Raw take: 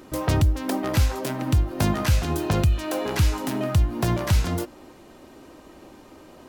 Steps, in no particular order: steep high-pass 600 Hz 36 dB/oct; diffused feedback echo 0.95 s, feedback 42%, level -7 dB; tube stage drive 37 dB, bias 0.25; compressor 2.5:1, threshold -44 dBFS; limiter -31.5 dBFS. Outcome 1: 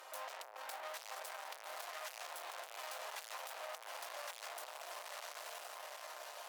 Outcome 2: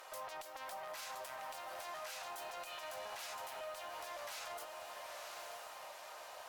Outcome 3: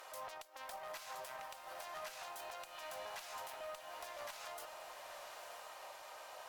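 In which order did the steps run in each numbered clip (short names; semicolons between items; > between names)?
diffused feedback echo > tube stage > steep high-pass > compressor > limiter; steep high-pass > limiter > diffused feedback echo > compressor > tube stage; limiter > steep high-pass > tube stage > diffused feedback echo > compressor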